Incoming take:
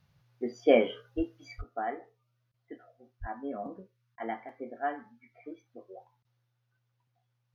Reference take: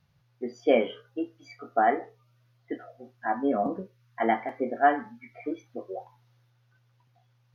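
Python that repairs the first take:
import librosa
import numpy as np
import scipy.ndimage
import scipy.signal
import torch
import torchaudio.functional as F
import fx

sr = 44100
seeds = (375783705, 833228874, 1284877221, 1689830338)

y = fx.highpass(x, sr, hz=140.0, slope=24, at=(1.16, 1.28), fade=0.02)
y = fx.highpass(y, sr, hz=140.0, slope=24, at=(1.57, 1.69), fade=0.02)
y = fx.highpass(y, sr, hz=140.0, slope=24, at=(3.2, 3.32), fade=0.02)
y = fx.fix_interpolate(y, sr, at_s=(2.52, 4.16, 6.23), length_ms=17.0)
y = fx.gain(y, sr, db=fx.steps((0.0, 0.0), (1.61, 11.5)))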